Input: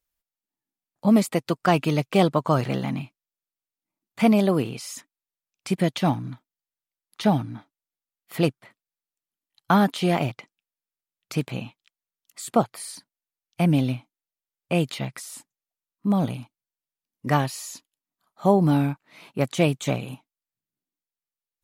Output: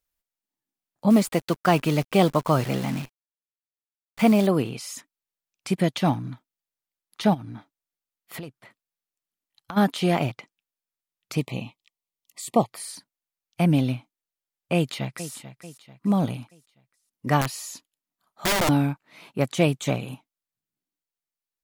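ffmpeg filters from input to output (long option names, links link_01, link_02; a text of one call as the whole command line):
ffmpeg -i in.wav -filter_complex "[0:a]asettb=1/sr,asplit=3[link_01][link_02][link_03];[link_01]atrim=end=1.104[link_04];[link_02]atrim=start=1.1:end=4.47,asetpts=PTS-STARTPTS,afade=type=in:duration=0.004:curve=qsin,afade=type=out:start_time=3.366:duration=0.004:curve=qsin,acrusher=bits=7:dc=4:mix=0:aa=0.000001[link_05];[link_03]atrim=start=4.466[link_06];[link_04][link_05]acrossfade=duration=0.004:curve1=hsin:curve2=qsin[link_07];[link_07][link_06]acrossfade=duration=0.004:curve1=qsin:curve2=hsin,asplit=3[link_08][link_09][link_10];[link_08]afade=type=out:start_time=7.33:duration=0.02[link_11];[link_09]acompressor=threshold=-32dB:ratio=16:attack=3.2:release=140:knee=1:detection=peak,afade=type=in:start_time=7.33:duration=0.02,afade=type=out:start_time=9.76:duration=0.02[link_12];[link_10]afade=type=in:start_time=9.76:duration=0.02[link_13];[link_11][link_12][link_13]amix=inputs=3:normalize=0,asettb=1/sr,asplit=3[link_14][link_15][link_16];[link_14]atrim=end=11.374[link_17];[link_15]atrim=start=11.37:end=12.72,asetpts=PTS-STARTPTS,afade=type=in:duration=0.004:curve=qsin,afade=type=out:start_time=1.346:duration=0.004:curve=qsin,asuperstop=centerf=1500:order=12:qfactor=2.4[link_18];[link_16]atrim=start=12.716[link_19];[link_17][link_18]acrossfade=duration=0.004:curve1=hsin:curve2=qsin[link_20];[link_20][link_19]acrossfade=duration=0.004:curve1=qsin:curve2=hsin,asplit=2[link_21][link_22];[link_22]afade=type=in:start_time=14.75:duration=0.01,afade=type=out:start_time=15.33:duration=0.01,aecho=0:1:440|880|1320|1760:0.223872|0.100742|0.0453341|0.0204003[link_23];[link_21][link_23]amix=inputs=2:normalize=0,asettb=1/sr,asplit=3[link_24][link_25][link_26];[link_24]atrim=end=17.414[link_27];[link_25]atrim=start=17.41:end=18.69,asetpts=PTS-STARTPTS,afade=type=in:duration=0.004:curve=qsin,afade=type=out:start_time=1.276:duration=0.004:curve=qsin,aeval=exprs='(mod(7.5*val(0)+1,2)-1)/7.5':channel_layout=same[link_28];[link_26]atrim=start=18.686[link_29];[link_27][link_28]acrossfade=duration=0.004:curve1=hsin:curve2=qsin[link_30];[link_30][link_29]acrossfade=duration=0.004:curve1=qsin:curve2=hsin" out.wav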